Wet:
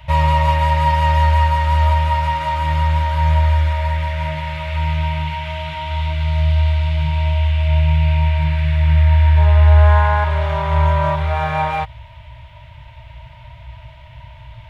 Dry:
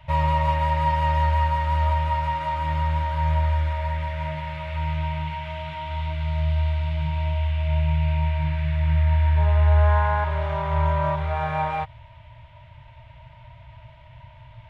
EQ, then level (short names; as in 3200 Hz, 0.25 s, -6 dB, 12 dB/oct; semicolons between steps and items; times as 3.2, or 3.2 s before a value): bell 60 Hz +10 dB 0.41 oct; high shelf 3000 Hz +8.5 dB; +5.0 dB